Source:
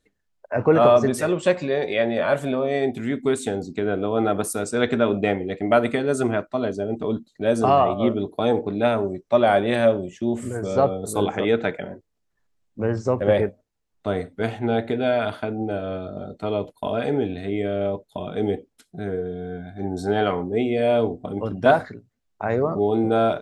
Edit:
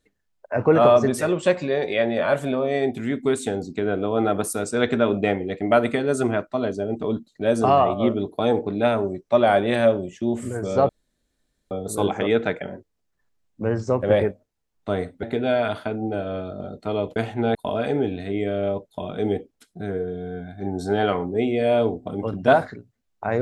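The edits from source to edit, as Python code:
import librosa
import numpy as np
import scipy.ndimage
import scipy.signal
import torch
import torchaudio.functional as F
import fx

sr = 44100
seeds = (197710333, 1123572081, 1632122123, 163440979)

y = fx.edit(x, sr, fx.insert_room_tone(at_s=10.89, length_s=0.82),
    fx.move(start_s=14.41, length_s=0.39, to_s=16.73), tone=tone)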